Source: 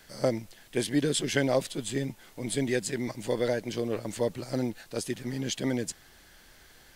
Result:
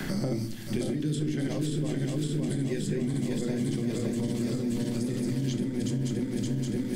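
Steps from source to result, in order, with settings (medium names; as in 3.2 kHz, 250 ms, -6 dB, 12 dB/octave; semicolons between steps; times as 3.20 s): backward echo that repeats 285 ms, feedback 82%, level -4.5 dB; resonant low shelf 390 Hz +10 dB, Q 1.5; peak limiter -19 dBFS, peak gain reduction 15 dB; simulated room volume 310 m³, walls furnished, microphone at 1 m; three bands compressed up and down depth 100%; trim -5.5 dB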